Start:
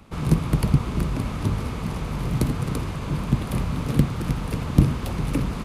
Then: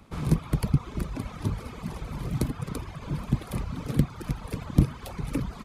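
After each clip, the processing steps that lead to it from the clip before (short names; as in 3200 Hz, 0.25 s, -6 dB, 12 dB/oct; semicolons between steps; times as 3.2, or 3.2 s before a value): reverb removal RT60 1.7 s; notch 2800 Hz, Q 18; gain -3.5 dB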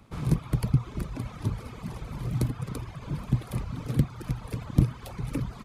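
bell 120 Hz +8.5 dB 0.21 oct; gain -2.5 dB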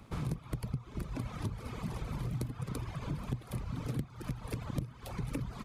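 compressor 8:1, threshold -34 dBFS, peak gain reduction 20 dB; gain +1 dB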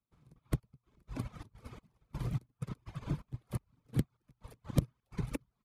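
step gate "...xx..x.xxx.xx" 126 bpm -12 dB; upward expander 2.5:1, over -53 dBFS; gain +8 dB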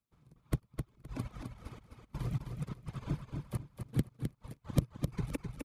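feedback echo 0.259 s, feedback 23%, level -6 dB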